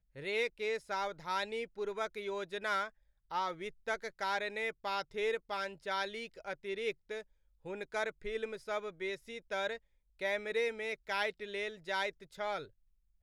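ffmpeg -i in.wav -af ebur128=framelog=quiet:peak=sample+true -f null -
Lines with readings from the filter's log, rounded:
Integrated loudness:
  I:         -37.8 LUFS
  Threshold: -47.9 LUFS
Loudness range:
  LRA:         3.2 LU
  Threshold: -58.2 LUFS
  LRA low:   -40.4 LUFS
  LRA high:  -37.2 LUFS
Sample peak:
  Peak:      -20.3 dBFS
True peak:
  Peak:      -20.2 dBFS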